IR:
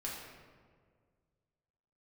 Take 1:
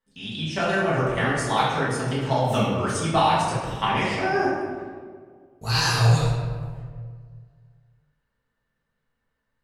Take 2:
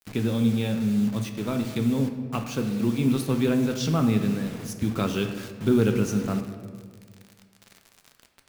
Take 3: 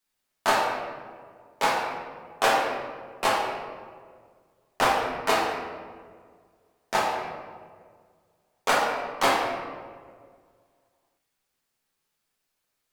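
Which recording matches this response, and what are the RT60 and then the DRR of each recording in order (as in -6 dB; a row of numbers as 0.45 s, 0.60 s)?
3; 1.8 s, 1.8 s, 1.8 s; -9.5 dB, 5.0 dB, -5.0 dB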